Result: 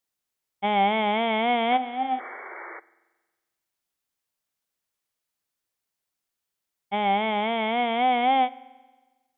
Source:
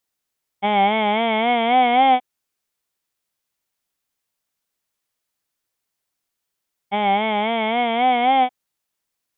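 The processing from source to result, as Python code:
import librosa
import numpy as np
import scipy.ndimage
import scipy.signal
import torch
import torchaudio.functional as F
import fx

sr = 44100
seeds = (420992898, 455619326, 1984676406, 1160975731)

y = fx.spec_paint(x, sr, seeds[0], shape='noise', start_s=1.71, length_s=1.09, low_hz=330.0, high_hz=2300.0, level_db=-35.0)
y = fx.comb_fb(y, sr, f0_hz=260.0, decay_s=0.39, harmonics='odd', damping=0.0, mix_pct=80, at=(1.76, 2.18), fade=0.02)
y = fx.rev_spring(y, sr, rt60_s=1.3, pass_ms=(45,), chirp_ms=50, drr_db=19.5)
y = F.gain(torch.from_numpy(y), -4.5).numpy()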